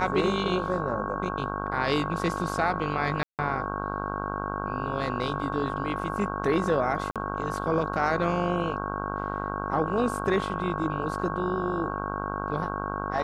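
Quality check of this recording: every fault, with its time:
buzz 50 Hz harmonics 32 -33 dBFS
whine 1.1 kHz -35 dBFS
3.23–3.39 s: dropout 158 ms
7.11–7.16 s: dropout 47 ms

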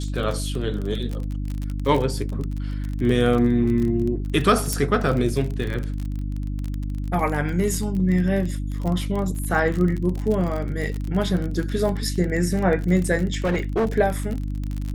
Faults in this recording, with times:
crackle 34 per s -26 dBFS
hum 50 Hz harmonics 6 -27 dBFS
4.73 s: pop -8 dBFS
13.34–13.88 s: clipped -17.5 dBFS

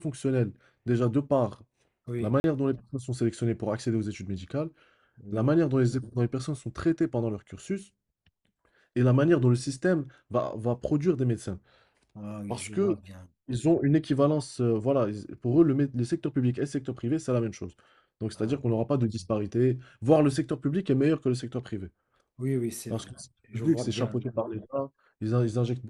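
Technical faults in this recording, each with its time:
2.40–2.44 s: dropout 41 ms

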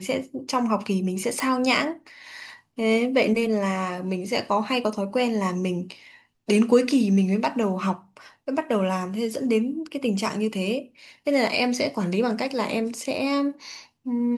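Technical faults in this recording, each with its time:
1.40 s: pop

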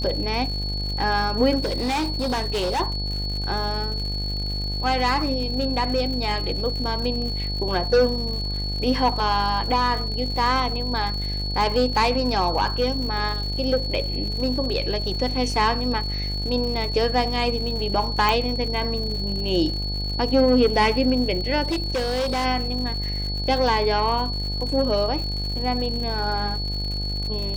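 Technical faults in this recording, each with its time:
buzz 50 Hz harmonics 18 -28 dBFS
crackle 140 per s -31 dBFS
whine 4.4 kHz -29 dBFS
1.60–2.81 s: clipped -20.5 dBFS
18.29 s: pop
21.63–22.46 s: clipped -20.5 dBFS

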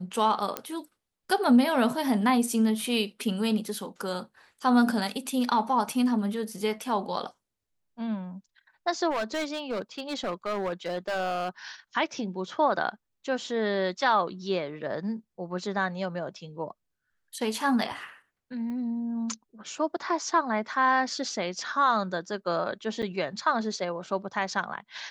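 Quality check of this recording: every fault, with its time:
0.57 s: pop -13 dBFS
9.10–11.49 s: clipped -25.5 dBFS
18.70 s: pop -28 dBFS
23.02–23.03 s: dropout 7.2 ms

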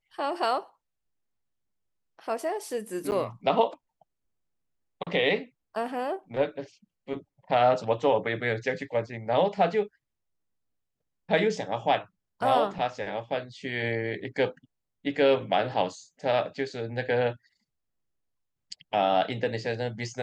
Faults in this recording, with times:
3.11–3.12 s: dropout 9.5 ms

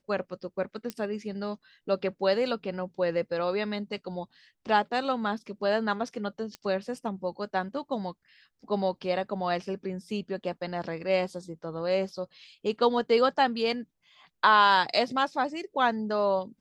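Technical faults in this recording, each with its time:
0.90 s: pop -18 dBFS
6.55 s: pop -23 dBFS

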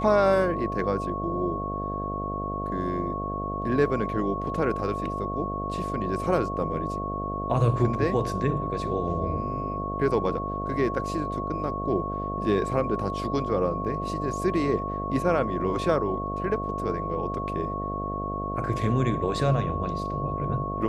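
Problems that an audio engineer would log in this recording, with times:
buzz 50 Hz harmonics 14 -33 dBFS
whine 1.1 kHz -31 dBFS

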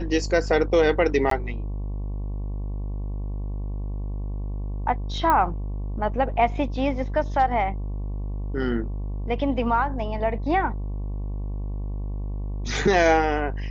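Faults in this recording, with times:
buzz 50 Hz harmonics 23 -29 dBFS
1.30–1.31 s: dropout 13 ms
5.30 s: pop -10 dBFS

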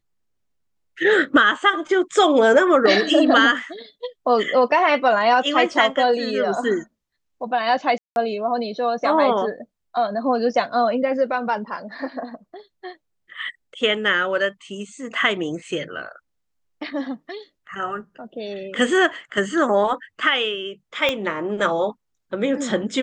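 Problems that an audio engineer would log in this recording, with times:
7.98–8.16 s: dropout 181 ms
21.09 s: pop -8 dBFS

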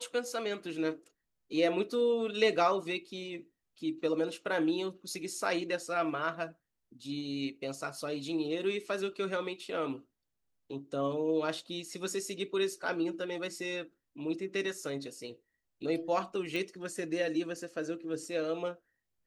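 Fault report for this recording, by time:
16.56 s: pop

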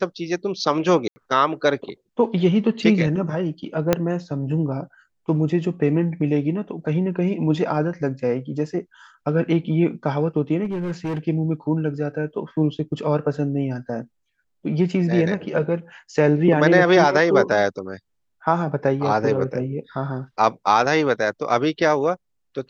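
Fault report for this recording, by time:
1.08–1.16 s: dropout 80 ms
3.93 s: pop -3 dBFS
10.64–11.19 s: clipped -22 dBFS

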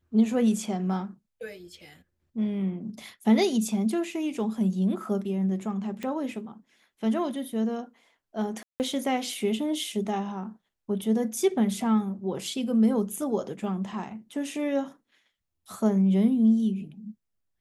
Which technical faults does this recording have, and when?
6.03 s: pop -21 dBFS
8.63–8.80 s: dropout 169 ms

